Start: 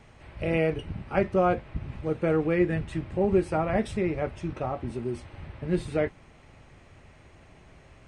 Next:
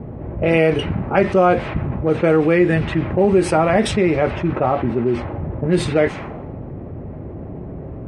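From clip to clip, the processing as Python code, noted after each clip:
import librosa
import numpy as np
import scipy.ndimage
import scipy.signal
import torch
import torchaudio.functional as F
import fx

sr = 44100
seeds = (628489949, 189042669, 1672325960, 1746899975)

y = fx.highpass(x, sr, hz=160.0, slope=6)
y = fx.env_lowpass(y, sr, base_hz=340.0, full_db=-23.5)
y = fx.env_flatten(y, sr, amount_pct=50)
y = y * librosa.db_to_amplitude(8.0)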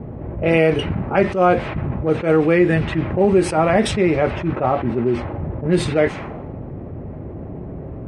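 y = fx.attack_slew(x, sr, db_per_s=160.0)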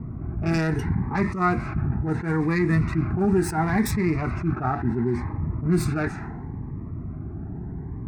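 y = fx.self_delay(x, sr, depth_ms=0.13)
y = fx.fixed_phaser(y, sr, hz=1300.0, stages=4)
y = fx.notch_cascade(y, sr, direction='rising', hz=0.72)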